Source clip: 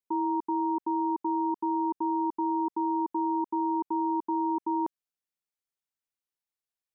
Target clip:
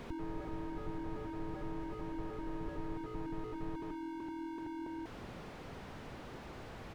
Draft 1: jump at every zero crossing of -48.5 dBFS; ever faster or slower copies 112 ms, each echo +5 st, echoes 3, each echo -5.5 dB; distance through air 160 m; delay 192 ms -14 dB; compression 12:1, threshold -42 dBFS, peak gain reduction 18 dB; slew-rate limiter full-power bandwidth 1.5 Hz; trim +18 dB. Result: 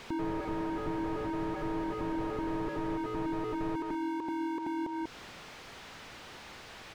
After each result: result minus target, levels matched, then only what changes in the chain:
slew-rate limiter: distortion -11 dB; jump at every zero crossing: distortion -7 dB
change: slew-rate limiter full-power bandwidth 0.5 Hz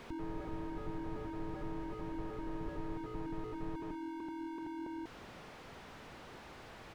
jump at every zero crossing: distortion -7 dB
change: jump at every zero crossing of -41 dBFS

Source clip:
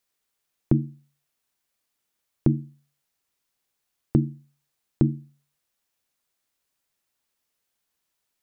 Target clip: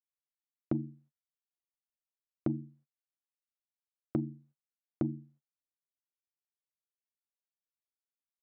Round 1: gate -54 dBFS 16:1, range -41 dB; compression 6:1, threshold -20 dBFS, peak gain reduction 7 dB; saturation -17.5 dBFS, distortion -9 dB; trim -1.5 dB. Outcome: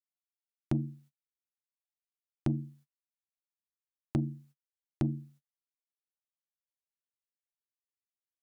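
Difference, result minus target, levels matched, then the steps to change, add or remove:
500 Hz band -4.0 dB
add after compression: band-pass filter 370 Hz, Q 0.85

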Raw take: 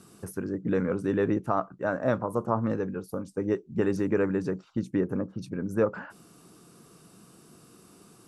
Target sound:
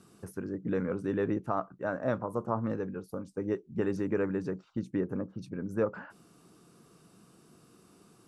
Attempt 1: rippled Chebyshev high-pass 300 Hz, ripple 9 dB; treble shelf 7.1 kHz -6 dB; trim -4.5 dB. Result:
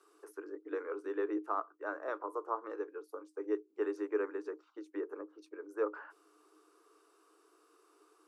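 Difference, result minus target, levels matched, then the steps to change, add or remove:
250 Hz band -3.5 dB
remove: rippled Chebyshev high-pass 300 Hz, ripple 9 dB

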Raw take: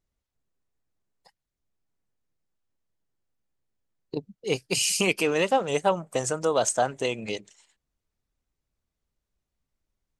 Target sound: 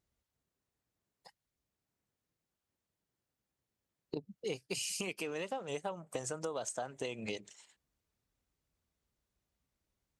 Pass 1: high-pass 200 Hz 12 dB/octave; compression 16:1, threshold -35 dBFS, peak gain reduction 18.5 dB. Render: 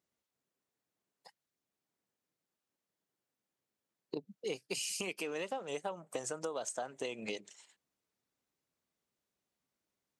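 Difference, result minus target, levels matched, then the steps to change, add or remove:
125 Hz band -5.5 dB
change: high-pass 53 Hz 12 dB/octave

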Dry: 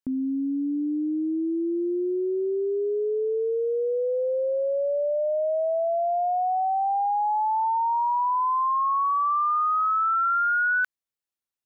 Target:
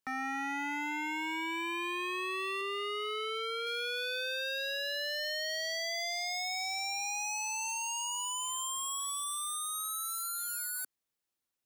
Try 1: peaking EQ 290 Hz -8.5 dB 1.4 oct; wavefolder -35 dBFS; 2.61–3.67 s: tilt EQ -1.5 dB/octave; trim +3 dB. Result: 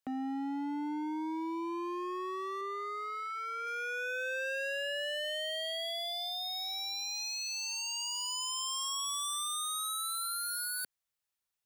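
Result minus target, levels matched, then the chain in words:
250 Hz band +6.0 dB
peaking EQ 290 Hz +2.5 dB 1.4 oct; wavefolder -35 dBFS; 2.61–3.67 s: tilt EQ -1.5 dB/octave; trim +3 dB

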